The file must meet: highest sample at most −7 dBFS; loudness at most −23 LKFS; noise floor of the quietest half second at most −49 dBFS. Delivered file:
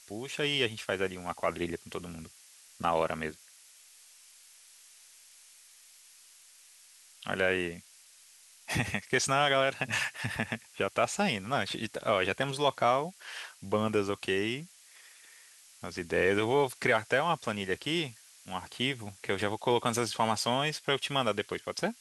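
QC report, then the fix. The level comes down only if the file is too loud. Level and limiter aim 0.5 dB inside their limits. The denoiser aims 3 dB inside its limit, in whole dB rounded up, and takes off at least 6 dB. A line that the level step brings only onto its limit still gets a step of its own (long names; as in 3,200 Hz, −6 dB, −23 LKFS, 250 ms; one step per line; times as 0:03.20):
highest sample −12.0 dBFS: in spec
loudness −31.0 LKFS: in spec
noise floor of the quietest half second −58 dBFS: in spec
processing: no processing needed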